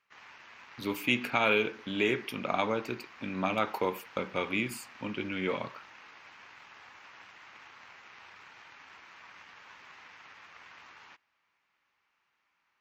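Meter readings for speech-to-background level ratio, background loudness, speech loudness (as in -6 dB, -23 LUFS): 19.5 dB, -51.0 LUFS, -31.5 LUFS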